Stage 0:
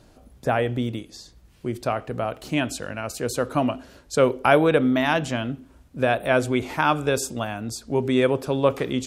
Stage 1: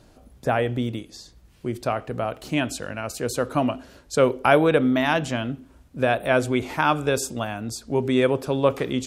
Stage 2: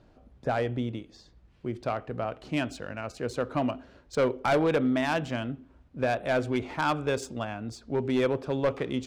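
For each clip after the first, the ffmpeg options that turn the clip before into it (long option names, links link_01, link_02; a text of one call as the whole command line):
ffmpeg -i in.wav -af anull out.wav
ffmpeg -i in.wav -af "volume=14dB,asoftclip=hard,volume=-14dB,adynamicsmooth=sensitivity=2.5:basefreq=3700,volume=-5dB" out.wav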